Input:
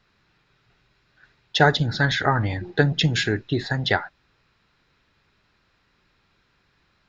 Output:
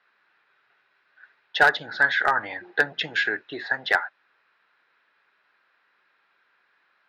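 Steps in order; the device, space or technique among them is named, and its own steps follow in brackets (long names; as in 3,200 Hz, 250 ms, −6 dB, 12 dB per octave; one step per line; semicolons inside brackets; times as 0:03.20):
megaphone (band-pass filter 600–2,800 Hz; parametric band 1,600 Hz +5.5 dB 0.5 octaves; hard clipping −9.5 dBFS, distortion −18 dB)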